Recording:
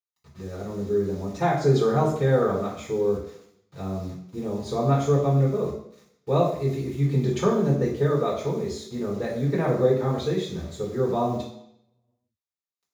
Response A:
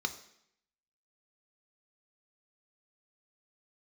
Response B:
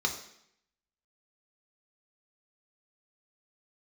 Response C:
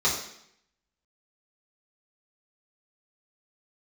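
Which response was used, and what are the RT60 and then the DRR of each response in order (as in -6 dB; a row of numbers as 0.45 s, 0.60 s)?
C; 0.70 s, 0.70 s, 0.70 s; 7.0 dB, 1.5 dB, -8.5 dB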